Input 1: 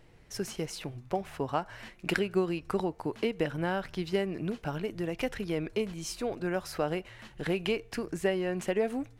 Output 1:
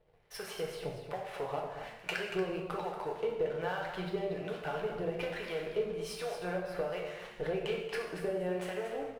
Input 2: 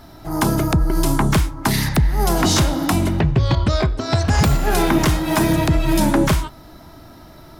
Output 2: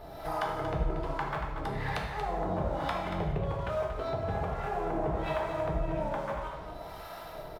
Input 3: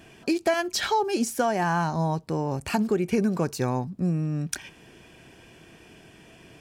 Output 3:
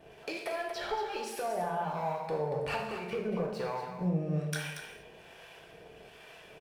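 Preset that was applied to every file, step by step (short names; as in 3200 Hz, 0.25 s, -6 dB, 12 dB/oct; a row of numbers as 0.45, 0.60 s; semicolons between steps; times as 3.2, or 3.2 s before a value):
resonant low shelf 380 Hz -7 dB, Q 3; treble ducked by the level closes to 1100 Hz, closed at -16 dBFS; bell 6800 Hz -15 dB 0.76 oct; compressor 12:1, threshold -30 dBFS; sample leveller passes 2; harmonic tremolo 1.2 Hz, depth 70%, crossover 720 Hz; on a send: echo 0.233 s -9 dB; on the sum: non-linear reverb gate 0.27 s falling, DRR -0.5 dB; gain -6 dB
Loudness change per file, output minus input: -4.0, -15.5, -8.5 LU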